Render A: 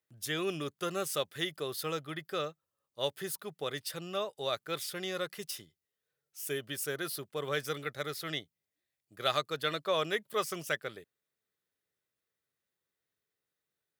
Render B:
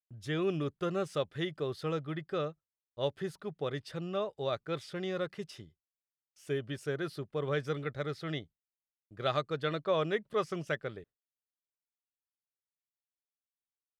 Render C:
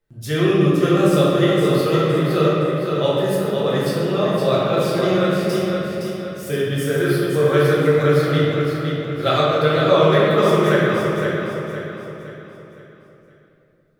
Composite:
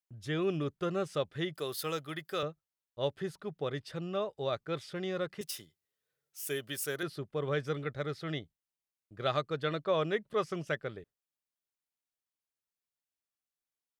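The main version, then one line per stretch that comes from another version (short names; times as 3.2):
B
1.55–2.43 from A
5.41–7.03 from A
not used: C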